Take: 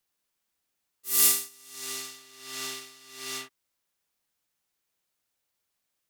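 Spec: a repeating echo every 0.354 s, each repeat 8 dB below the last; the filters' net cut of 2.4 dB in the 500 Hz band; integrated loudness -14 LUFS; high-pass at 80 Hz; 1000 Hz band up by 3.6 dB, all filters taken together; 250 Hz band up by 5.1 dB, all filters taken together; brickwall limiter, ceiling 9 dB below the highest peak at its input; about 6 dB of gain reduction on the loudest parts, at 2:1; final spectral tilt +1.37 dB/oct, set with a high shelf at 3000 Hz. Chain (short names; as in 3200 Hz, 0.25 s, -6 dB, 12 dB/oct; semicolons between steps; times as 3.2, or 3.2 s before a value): HPF 80 Hz; bell 250 Hz +7.5 dB; bell 500 Hz -8.5 dB; bell 1000 Hz +4.5 dB; high shelf 3000 Hz +7.5 dB; compressor 2:1, threshold -20 dBFS; limiter -15.5 dBFS; feedback echo 0.354 s, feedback 40%, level -8 dB; gain +15 dB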